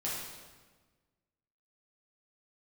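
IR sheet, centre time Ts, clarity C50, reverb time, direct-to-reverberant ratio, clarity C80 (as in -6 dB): 81 ms, 0.0 dB, 1.4 s, -7.5 dB, 2.5 dB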